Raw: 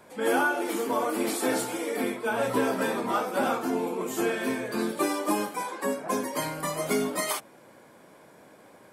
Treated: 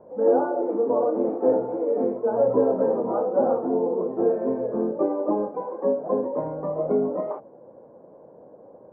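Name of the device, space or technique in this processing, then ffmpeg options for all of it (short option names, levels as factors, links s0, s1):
under water: -af "lowpass=f=880:w=0.5412,lowpass=f=880:w=1.3066,equalizer=f=510:t=o:w=0.54:g=9.5,volume=1.19"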